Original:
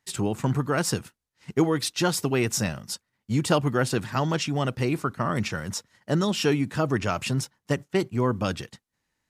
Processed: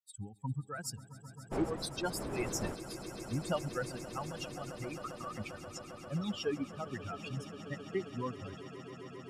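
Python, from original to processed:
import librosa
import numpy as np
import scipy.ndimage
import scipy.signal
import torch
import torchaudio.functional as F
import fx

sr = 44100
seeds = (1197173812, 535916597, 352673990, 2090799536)

y = fx.bin_expand(x, sr, power=3.0)
y = fx.dmg_wind(y, sr, seeds[0], corner_hz=550.0, level_db=-29.0, at=(1.51, 2.74), fade=0.02)
y = fx.echo_swell(y, sr, ms=133, loudest=8, wet_db=-17.5)
y = y * librosa.db_to_amplitude(-7.0)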